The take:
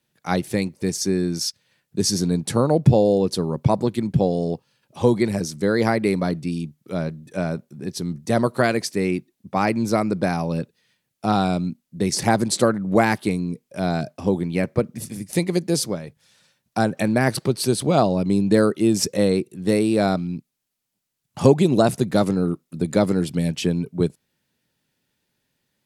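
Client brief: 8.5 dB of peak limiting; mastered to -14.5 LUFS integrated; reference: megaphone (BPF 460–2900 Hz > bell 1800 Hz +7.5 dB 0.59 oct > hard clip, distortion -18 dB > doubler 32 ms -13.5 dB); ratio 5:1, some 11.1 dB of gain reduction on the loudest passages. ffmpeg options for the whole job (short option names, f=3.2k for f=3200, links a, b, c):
-filter_complex "[0:a]acompressor=threshold=-23dB:ratio=5,alimiter=limit=-18dB:level=0:latency=1,highpass=460,lowpass=2.9k,equalizer=f=1.8k:t=o:w=0.59:g=7.5,asoftclip=type=hard:threshold=-25.5dB,asplit=2[a][b];[b]adelay=32,volume=-13.5dB[c];[a][c]amix=inputs=2:normalize=0,volume=22dB"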